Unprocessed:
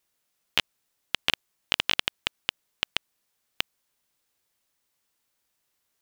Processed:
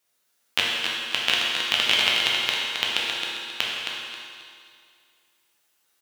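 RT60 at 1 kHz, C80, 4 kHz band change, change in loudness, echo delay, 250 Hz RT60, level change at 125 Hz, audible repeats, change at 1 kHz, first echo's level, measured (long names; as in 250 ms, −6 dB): 2.2 s, −1.5 dB, +8.0 dB, +6.5 dB, 268 ms, 2.2 s, +1.0 dB, 1, +7.5 dB, −5.5 dB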